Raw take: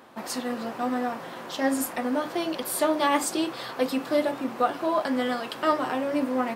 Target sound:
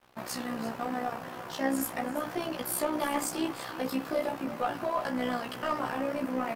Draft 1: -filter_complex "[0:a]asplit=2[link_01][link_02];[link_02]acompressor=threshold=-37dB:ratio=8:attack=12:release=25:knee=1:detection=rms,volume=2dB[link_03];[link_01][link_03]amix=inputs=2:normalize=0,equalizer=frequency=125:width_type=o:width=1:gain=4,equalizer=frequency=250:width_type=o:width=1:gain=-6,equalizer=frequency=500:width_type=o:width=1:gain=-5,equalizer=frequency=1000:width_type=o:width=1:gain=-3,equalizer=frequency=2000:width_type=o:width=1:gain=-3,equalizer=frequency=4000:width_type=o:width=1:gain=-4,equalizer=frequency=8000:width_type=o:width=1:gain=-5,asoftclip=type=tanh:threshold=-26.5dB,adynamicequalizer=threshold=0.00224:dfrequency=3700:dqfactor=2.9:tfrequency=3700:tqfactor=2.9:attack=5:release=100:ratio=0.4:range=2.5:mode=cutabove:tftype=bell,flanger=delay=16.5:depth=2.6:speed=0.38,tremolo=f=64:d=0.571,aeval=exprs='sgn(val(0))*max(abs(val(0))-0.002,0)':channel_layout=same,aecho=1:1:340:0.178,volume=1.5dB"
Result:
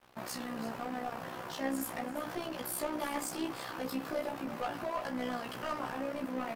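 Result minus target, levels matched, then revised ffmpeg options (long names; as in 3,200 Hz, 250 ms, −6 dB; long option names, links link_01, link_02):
downward compressor: peak gain reduction +9 dB; soft clipping: distortion +7 dB
-filter_complex "[0:a]asplit=2[link_01][link_02];[link_02]acompressor=threshold=-27dB:ratio=8:attack=12:release=25:knee=1:detection=rms,volume=2dB[link_03];[link_01][link_03]amix=inputs=2:normalize=0,equalizer=frequency=125:width_type=o:width=1:gain=4,equalizer=frequency=250:width_type=o:width=1:gain=-6,equalizer=frequency=500:width_type=o:width=1:gain=-5,equalizer=frequency=1000:width_type=o:width=1:gain=-3,equalizer=frequency=2000:width_type=o:width=1:gain=-3,equalizer=frequency=4000:width_type=o:width=1:gain=-4,equalizer=frequency=8000:width_type=o:width=1:gain=-5,asoftclip=type=tanh:threshold=-17.5dB,adynamicequalizer=threshold=0.00224:dfrequency=3700:dqfactor=2.9:tfrequency=3700:tqfactor=2.9:attack=5:release=100:ratio=0.4:range=2.5:mode=cutabove:tftype=bell,flanger=delay=16.5:depth=2.6:speed=0.38,tremolo=f=64:d=0.571,aeval=exprs='sgn(val(0))*max(abs(val(0))-0.002,0)':channel_layout=same,aecho=1:1:340:0.178,volume=1.5dB"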